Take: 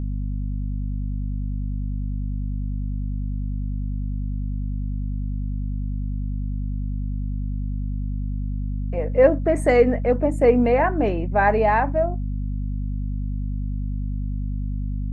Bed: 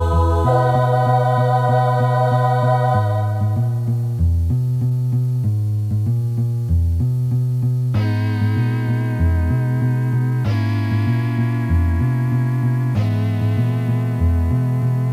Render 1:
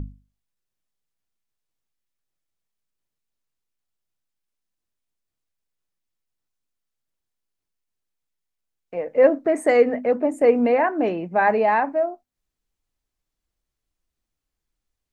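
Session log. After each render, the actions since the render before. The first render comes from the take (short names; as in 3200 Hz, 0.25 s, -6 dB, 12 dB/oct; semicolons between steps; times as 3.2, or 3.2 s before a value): notches 50/100/150/200/250 Hz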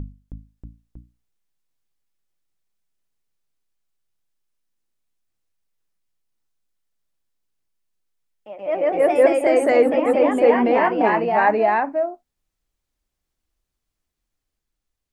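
echoes that change speed 0.318 s, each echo +1 st, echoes 3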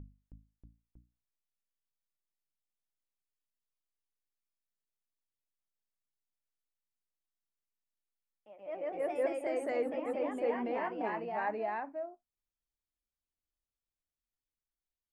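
gain -18 dB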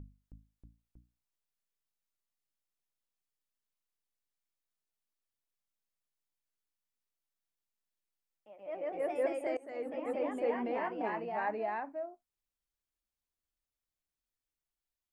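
9.57–10.11 fade in linear, from -22 dB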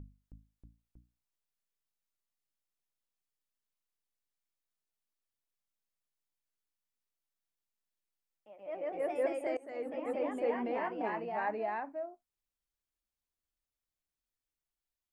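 nothing audible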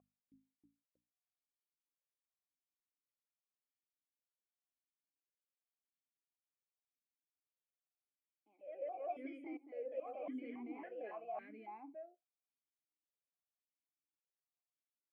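notch comb 910 Hz; vowel sequencer 3.6 Hz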